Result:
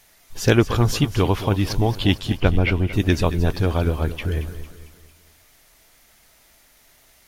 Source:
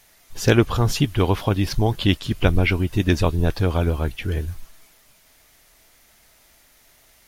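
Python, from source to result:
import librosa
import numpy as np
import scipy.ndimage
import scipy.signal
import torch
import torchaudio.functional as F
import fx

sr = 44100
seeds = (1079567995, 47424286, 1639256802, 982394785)

y = fx.high_shelf(x, sr, hz=5200.0, db=-10.5, at=(2.37, 2.93))
y = fx.echo_feedback(y, sr, ms=226, feedback_pct=44, wet_db=-13)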